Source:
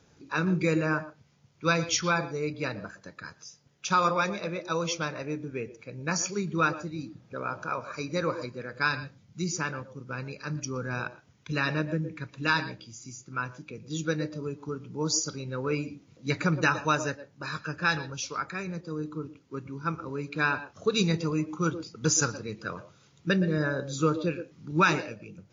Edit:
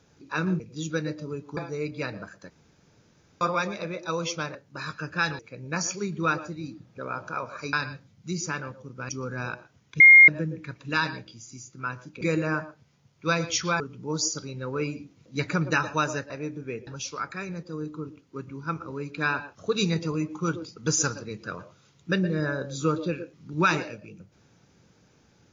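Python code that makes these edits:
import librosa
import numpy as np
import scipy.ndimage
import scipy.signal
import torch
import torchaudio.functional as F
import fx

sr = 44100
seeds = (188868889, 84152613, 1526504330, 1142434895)

y = fx.edit(x, sr, fx.swap(start_s=0.6, length_s=1.59, other_s=13.74, other_length_s=0.97),
    fx.room_tone_fill(start_s=3.12, length_s=0.91),
    fx.swap(start_s=5.17, length_s=0.57, other_s=17.21, other_length_s=0.84),
    fx.cut(start_s=8.08, length_s=0.76),
    fx.cut(start_s=10.2, length_s=0.42),
    fx.bleep(start_s=11.53, length_s=0.28, hz=2130.0, db=-8.0), tone=tone)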